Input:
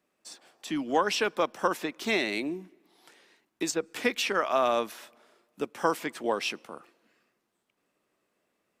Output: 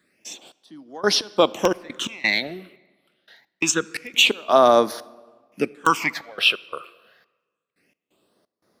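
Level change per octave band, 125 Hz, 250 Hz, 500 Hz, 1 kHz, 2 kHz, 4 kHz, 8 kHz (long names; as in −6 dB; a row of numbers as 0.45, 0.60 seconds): +8.0, +4.5, +7.5, +7.0, +8.5, +12.5, +10.5 decibels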